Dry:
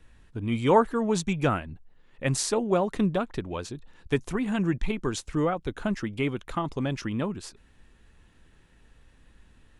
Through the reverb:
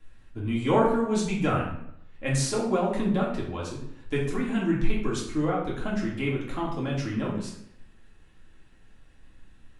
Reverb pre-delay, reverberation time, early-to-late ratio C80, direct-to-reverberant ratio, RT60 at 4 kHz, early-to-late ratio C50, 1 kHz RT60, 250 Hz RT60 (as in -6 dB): 3 ms, 0.75 s, 7.5 dB, -5.0 dB, 0.55 s, 4.0 dB, 0.70 s, 0.75 s